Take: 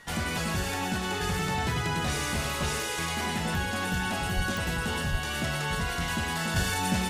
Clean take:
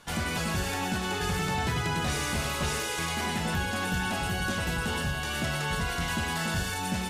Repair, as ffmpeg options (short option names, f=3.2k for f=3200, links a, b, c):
-filter_complex "[0:a]adeclick=t=4,bandreject=f=1.9k:w=30,asplit=3[a][b][c];[a]afade=t=out:st=4.35:d=0.02[d];[b]highpass=f=140:w=0.5412,highpass=f=140:w=1.3066,afade=t=in:st=4.35:d=0.02,afade=t=out:st=4.47:d=0.02[e];[c]afade=t=in:st=4.47:d=0.02[f];[d][e][f]amix=inputs=3:normalize=0,asplit=3[g][h][i];[g]afade=t=out:st=5.11:d=0.02[j];[h]highpass=f=140:w=0.5412,highpass=f=140:w=1.3066,afade=t=in:st=5.11:d=0.02,afade=t=out:st=5.23:d=0.02[k];[i]afade=t=in:st=5.23:d=0.02[l];[j][k][l]amix=inputs=3:normalize=0,asetnsamples=n=441:p=0,asendcmd='6.56 volume volume -3.5dB',volume=0dB"